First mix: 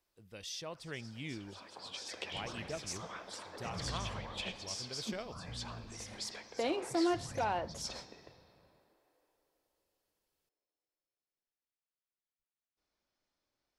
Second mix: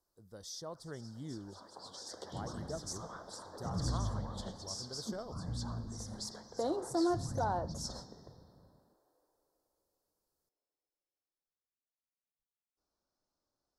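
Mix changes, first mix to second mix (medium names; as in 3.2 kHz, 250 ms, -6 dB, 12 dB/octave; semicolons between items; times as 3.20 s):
second sound +7.5 dB; master: add Butterworth band-stop 2.5 kHz, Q 0.83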